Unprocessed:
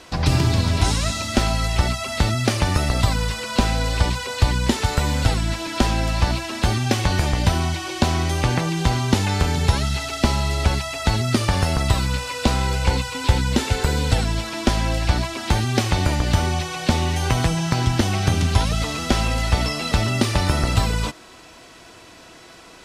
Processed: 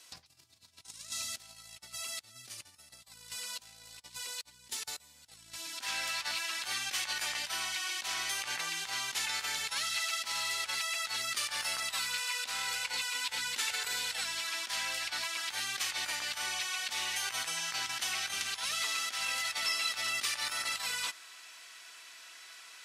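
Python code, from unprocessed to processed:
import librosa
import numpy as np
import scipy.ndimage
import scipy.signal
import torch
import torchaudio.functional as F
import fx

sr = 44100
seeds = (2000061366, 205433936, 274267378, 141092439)

y = fx.peak_eq(x, sr, hz=fx.steps((0.0, 85.0), (5.81, 1700.0)), db=12.0, octaves=2.4)
y = fx.over_compress(y, sr, threshold_db=-17.0, ratio=-0.5)
y = np.diff(y, prepend=0.0)
y = y * 10.0 ** (-7.5 / 20.0)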